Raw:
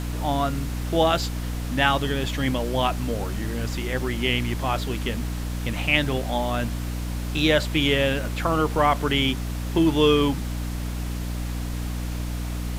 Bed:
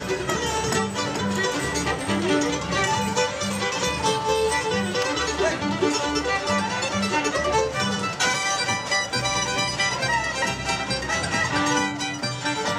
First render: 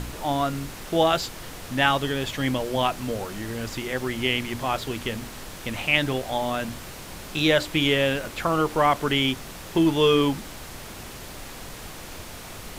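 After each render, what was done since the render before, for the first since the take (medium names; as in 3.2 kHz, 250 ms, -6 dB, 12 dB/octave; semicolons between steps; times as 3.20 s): de-hum 60 Hz, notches 5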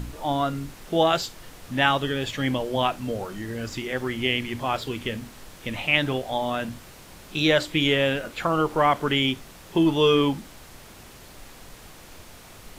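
noise print and reduce 7 dB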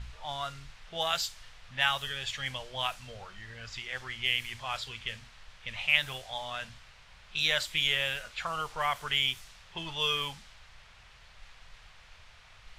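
amplifier tone stack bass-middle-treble 10-0-10; level-controlled noise filter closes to 2.5 kHz, open at -27.5 dBFS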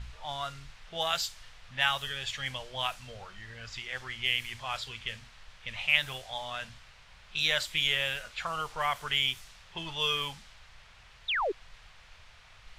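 11.28–11.52 s: painted sound fall 340–4000 Hz -29 dBFS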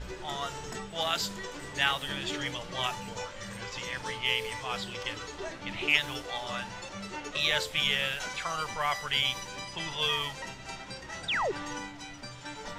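add bed -16.5 dB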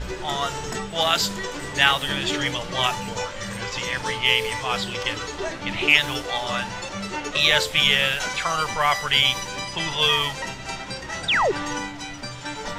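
trim +9.5 dB; peak limiter -1 dBFS, peak gain reduction 2 dB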